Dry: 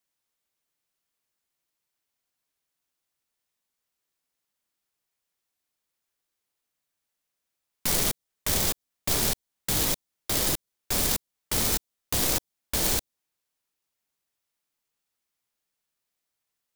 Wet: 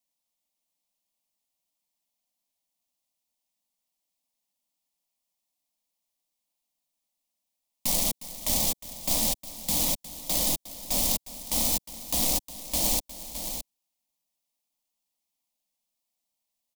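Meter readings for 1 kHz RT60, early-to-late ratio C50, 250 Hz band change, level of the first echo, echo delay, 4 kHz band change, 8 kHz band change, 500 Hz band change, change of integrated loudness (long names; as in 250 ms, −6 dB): no reverb audible, no reverb audible, −1.0 dB, −15.0 dB, 359 ms, −1.0 dB, +0.5 dB, −3.0 dB, 0.0 dB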